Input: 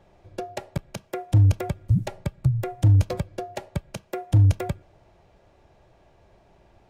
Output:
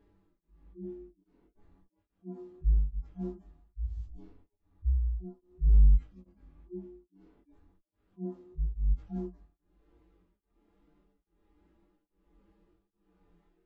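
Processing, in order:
harmonic-percussive split with one part muted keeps harmonic
change of speed 0.505×
chorus effect 1 Hz, delay 19.5 ms, depth 4.9 ms
tremolo along a rectified sine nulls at 1.2 Hz
level −2.5 dB

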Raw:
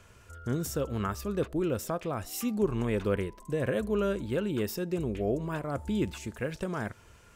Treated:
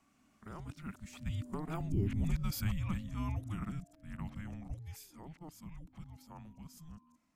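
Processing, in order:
played backwards from end to start
source passing by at 0:02.28, 14 m/s, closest 6.6 metres
frequency shifter −320 Hz
level −1 dB

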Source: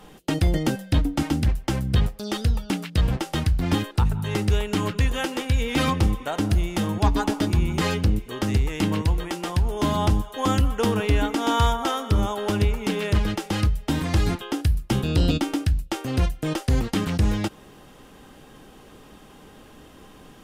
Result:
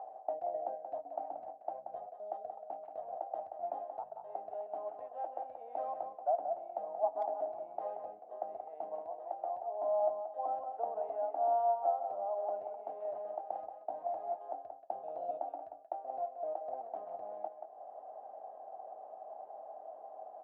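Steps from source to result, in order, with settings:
upward compression, threshold −25 dBFS
flat-topped band-pass 690 Hz, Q 5.1
far-end echo of a speakerphone 180 ms, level −7 dB
level +2.5 dB

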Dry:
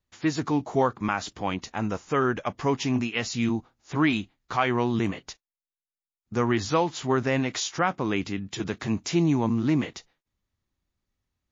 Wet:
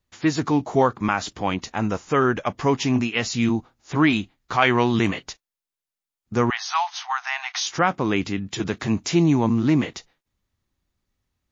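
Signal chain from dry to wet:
0:04.62–0:05.24: parametric band 3,000 Hz +5.5 dB 2.9 octaves
0:06.50–0:07.67: linear-phase brick-wall band-pass 680–6,600 Hz
level +4.5 dB

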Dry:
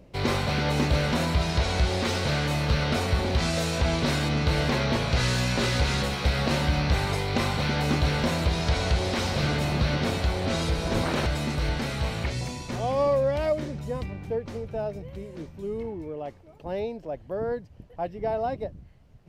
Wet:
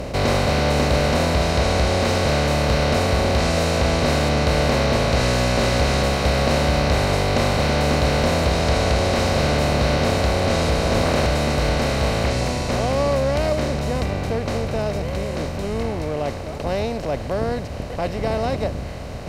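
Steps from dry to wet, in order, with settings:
compressor on every frequency bin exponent 0.4
notch filter 3,400 Hz, Q 12

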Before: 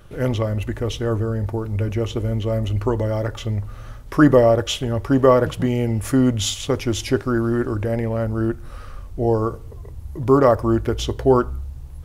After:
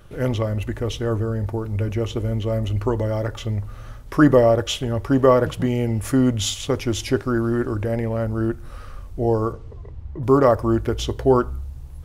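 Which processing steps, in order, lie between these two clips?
0:09.52–0:10.22: low-pass filter 6,100 Hz → 2,400 Hz 12 dB per octave
level −1 dB

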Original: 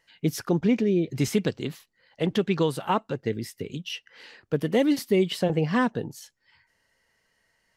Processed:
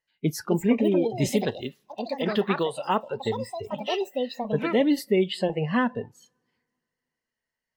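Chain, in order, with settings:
coupled-rooms reverb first 0.22 s, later 2.7 s, from −19 dB, DRR 15.5 dB
delay with pitch and tempo change per echo 330 ms, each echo +5 semitones, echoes 2, each echo −6 dB
noise reduction from a noise print of the clip's start 18 dB

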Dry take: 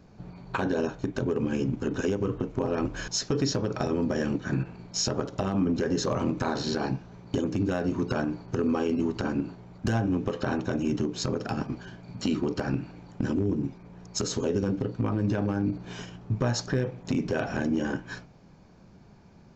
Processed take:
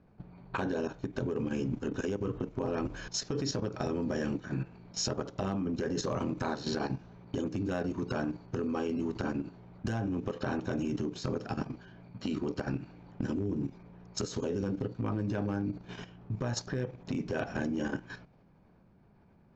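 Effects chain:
output level in coarse steps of 10 dB
low-pass that shuts in the quiet parts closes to 2,400 Hz, open at −26.5 dBFS
level −2 dB

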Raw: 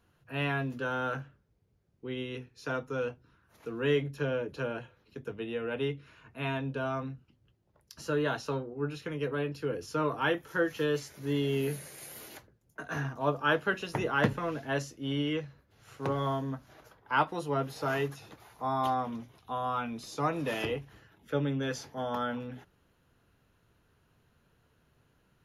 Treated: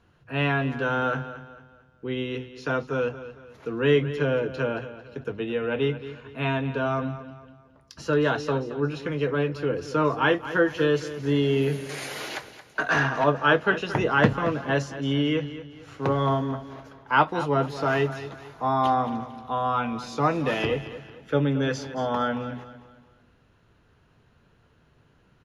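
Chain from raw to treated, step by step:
0:11.89–0:13.24: mid-hump overdrive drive 17 dB, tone 6,500 Hz, clips at −19 dBFS
high-frequency loss of the air 73 metres
repeating echo 224 ms, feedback 38%, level −13.5 dB
level +7.5 dB

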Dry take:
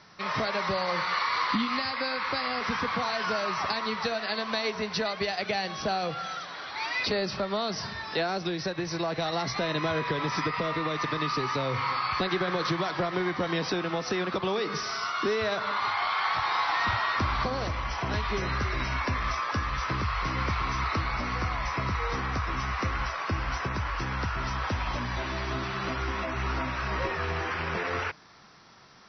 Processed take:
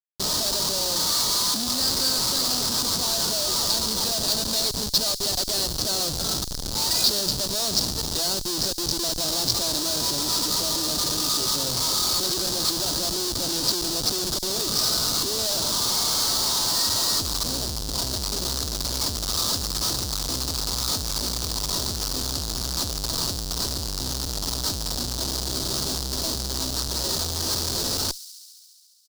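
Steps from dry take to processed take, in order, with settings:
in parallel at −2.5 dB: brickwall limiter −26 dBFS, peak gain reduction 9.5 dB
on the sum: comb filter 3.2 ms, depth 56%
comparator with hysteresis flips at −26 dBFS
high shelf with overshoot 3,200 Hz +13 dB, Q 3
delay with a high-pass on its return 69 ms, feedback 82%, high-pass 5,100 Hz, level −14 dB
level −5.5 dB

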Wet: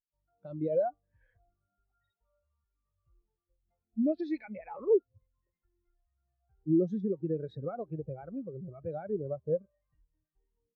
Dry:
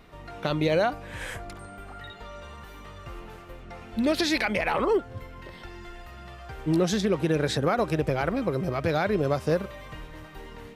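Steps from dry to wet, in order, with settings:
every bin expanded away from the loudest bin 2.5 to 1
level −5.5 dB

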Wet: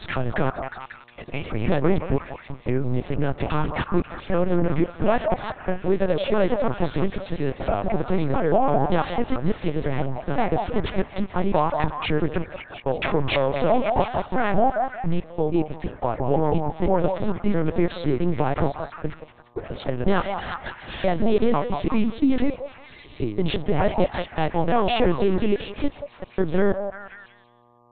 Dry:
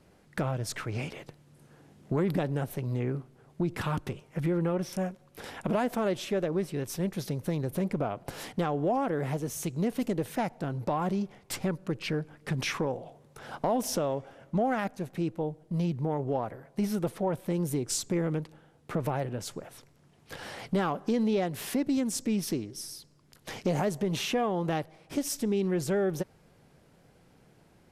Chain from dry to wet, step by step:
slices reordered back to front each 167 ms, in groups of 5
noise gate −46 dBFS, range −29 dB
echo through a band-pass that steps 178 ms, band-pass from 740 Hz, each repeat 0.7 octaves, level −3 dB
linear-prediction vocoder at 8 kHz pitch kept
hum with harmonics 120 Hz, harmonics 10, −66 dBFS 0 dB per octave
level +9 dB

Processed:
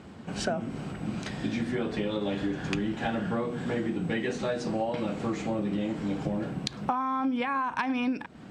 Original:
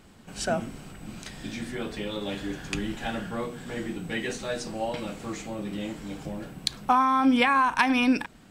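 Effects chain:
high-pass filter 86 Hz 12 dB per octave
tilt shelving filter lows +3.5 dB, about 1,500 Hz
downward compressor 12 to 1, threshold −31 dBFS, peak gain reduction 17.5 dB
high-frequency loss of the air 66 metres
level +5.5 dB

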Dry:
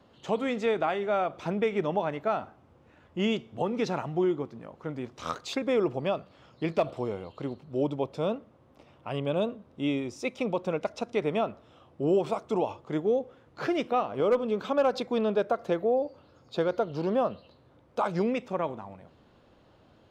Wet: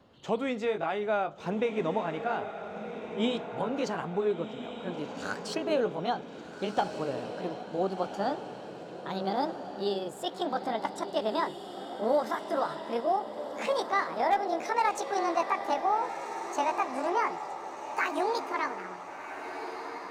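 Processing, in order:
pitch glide at a constant tempo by +11.5 semitones starting unshifted
feedback delay with all-pass diffusion 1,453 ms, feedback 49%, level −8.5 dB
level −1 dB

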